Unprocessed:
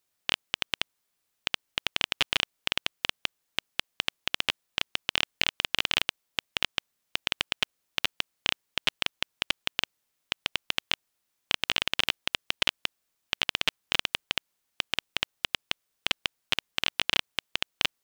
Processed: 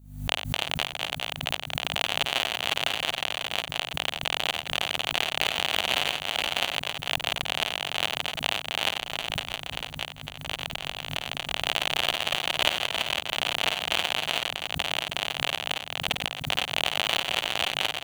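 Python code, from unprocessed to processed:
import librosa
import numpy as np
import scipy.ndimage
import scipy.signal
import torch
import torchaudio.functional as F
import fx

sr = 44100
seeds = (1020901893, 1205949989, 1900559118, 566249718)

y = fx.reverse_delay(x, sr, ms=442, wet_db=-5.5)
y = scipy.signal.sosfilt(scipy.signal.butter(2, 41.0, 'highpass', fs=sr, output='sos'), y)
y = fx.peak_eq(y, sr, hz=710.0, db=11.5, octaves=0.87)
y = fx.add_hum(y, sr, base_hz=50, snr_db=21)
y = fx.over_compress(y, sr, threshold_db=-33.0, ratio=-0.5, at=(9.01, 11.53))
y = fx.high_shelf(y, sr, hz=7500.0, db=9.0)
y = fx.notch(y, sr, hz=5200.0, q=5.7)
y = fx.echo_multitap(y, sr, ms=(53, 92, 262, 329, 507, 673), db=(-6.5, -11.0, -19.0, -11.5, -4.0, -11.0))
y = fx.pre_swell(y, sr, db_per_s=90.0)
y = y * 10.0 ** (-3.5 / 20.0)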